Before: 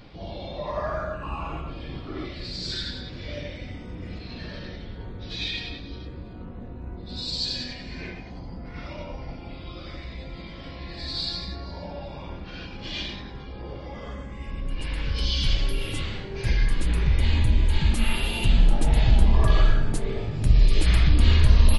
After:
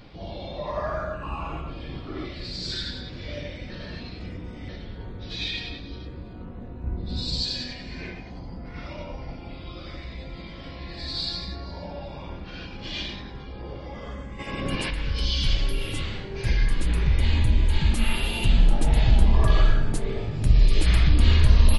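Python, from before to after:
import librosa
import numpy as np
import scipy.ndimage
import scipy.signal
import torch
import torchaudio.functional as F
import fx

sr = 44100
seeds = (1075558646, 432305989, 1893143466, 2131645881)

y = fx.low_shelf(x, sr, hz=240.0, db=8.5, at=(6.84, 7.43))
y = fx.spec_clip(y, sr, under_db=22, at=(14.38, 14.89), fade=0.02)
y = fx.edit(y, sr, fx.reverse_span(start_s=3.7, length_s=0.99), tone=tone)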